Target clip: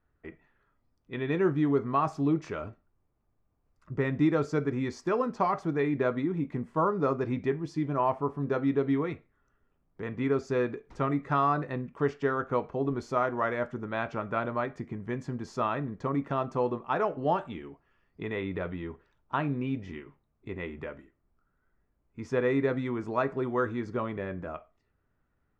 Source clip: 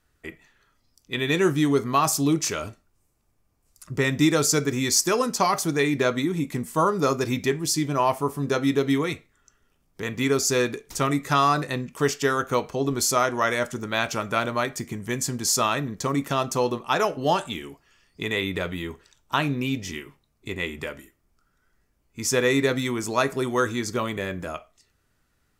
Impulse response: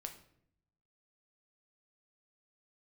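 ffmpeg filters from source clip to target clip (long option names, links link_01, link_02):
-af "lowpass=1500,volume=-4.5dB"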